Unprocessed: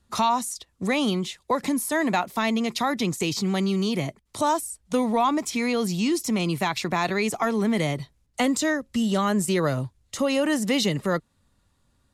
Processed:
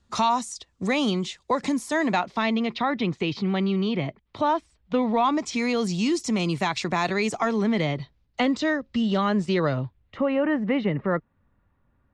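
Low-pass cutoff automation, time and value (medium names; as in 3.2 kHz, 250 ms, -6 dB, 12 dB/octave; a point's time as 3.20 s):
low-pass 24 dB/octave
1.87 s 7.7 kHz
2.78 s 3.6 kHz
4.94 s 3.6 kHz
5.63 s 7.7 kHz
7.35 s 7.7 kHz
7.89 s 4.6 kHz
9.65 s 4.6 kHz
10.27 s 2.2 kHz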